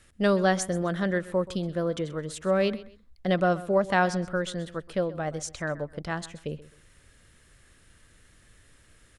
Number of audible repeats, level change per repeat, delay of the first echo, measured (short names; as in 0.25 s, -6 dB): 2, -11.5 dB, 0.129 s